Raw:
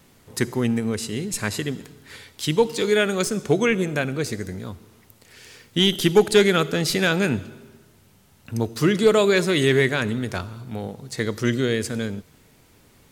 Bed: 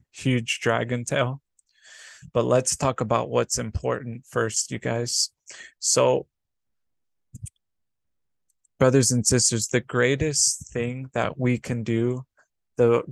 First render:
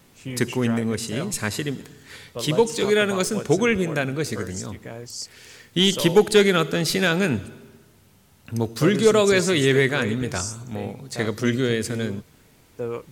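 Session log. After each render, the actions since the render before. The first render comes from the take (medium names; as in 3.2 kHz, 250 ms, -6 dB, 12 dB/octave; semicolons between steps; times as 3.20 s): add bed -10.5 dB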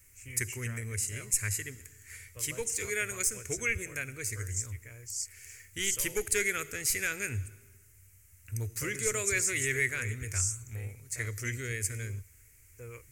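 FFT filter 100 Hz 0 dB, 170 Hz -27 dB, 430 Hz -18 dB, 800 Hz -27 dB, 2.2 kHz -2 dB, 3.6 kHz -23 dB, 6.9 kHz +2 dB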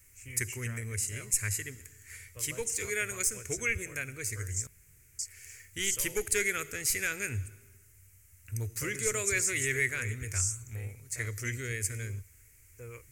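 4.67–5.19 s: room tone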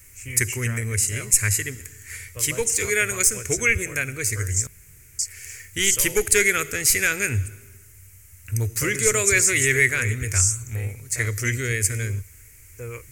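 trim +11 dB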